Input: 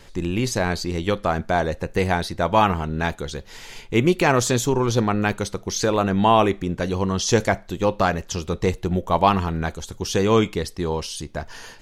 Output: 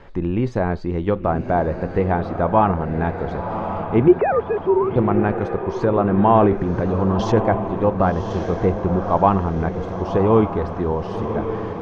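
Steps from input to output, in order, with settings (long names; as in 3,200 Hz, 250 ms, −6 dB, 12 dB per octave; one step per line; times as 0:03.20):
0:04.08–0:04.96: three sine waves on the formant tracks
low-pass filter 1,100 Hz 12 dB per octave
0:06.35–0:07.37: transient designer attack −2 dB, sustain +10 dB
feedback delay with all-pass diffusion 1,097 ms, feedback 47%, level −8 dB
one half of a high-frequency compander encoder only
level +2.5 dB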